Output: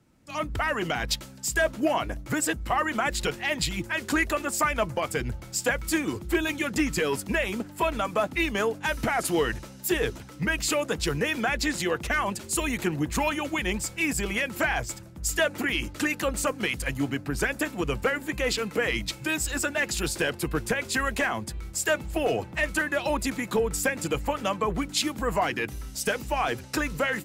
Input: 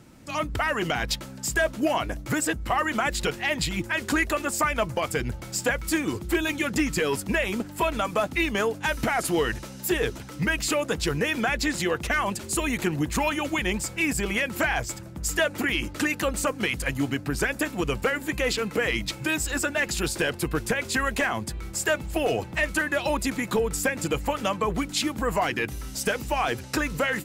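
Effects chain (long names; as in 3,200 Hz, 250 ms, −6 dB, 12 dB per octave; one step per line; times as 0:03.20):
multiband upward and downward expander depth 40%
level −1 dB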